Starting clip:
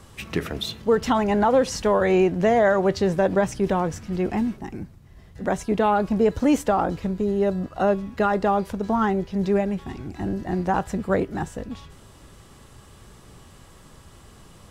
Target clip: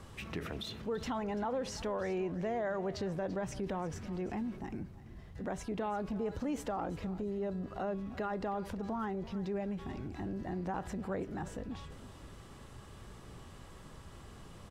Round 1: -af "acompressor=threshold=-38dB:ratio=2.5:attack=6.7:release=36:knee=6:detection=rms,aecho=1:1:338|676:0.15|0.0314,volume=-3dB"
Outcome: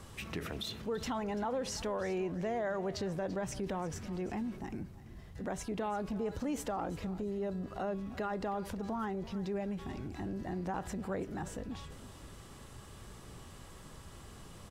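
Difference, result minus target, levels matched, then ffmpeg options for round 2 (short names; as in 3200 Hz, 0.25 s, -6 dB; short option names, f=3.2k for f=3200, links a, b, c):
8000 Hz band +4.5 dB
-af "acompressor=threshold=-38dB:ratio=2.5:attack=6.7:release=36:knee=6:detection=rms,highshelf=f=5.2k:g=-7.5,aecho=1:1:338|676:0.15|0.0314,volume=-3dB"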